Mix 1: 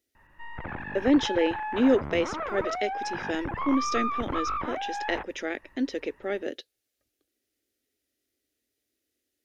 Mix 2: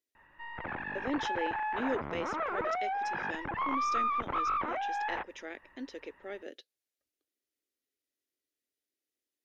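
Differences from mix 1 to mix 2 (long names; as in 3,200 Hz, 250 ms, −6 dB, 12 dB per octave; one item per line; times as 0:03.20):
speech −10.0 dB
master: add low-shelf EQ 200 Hz −11 dB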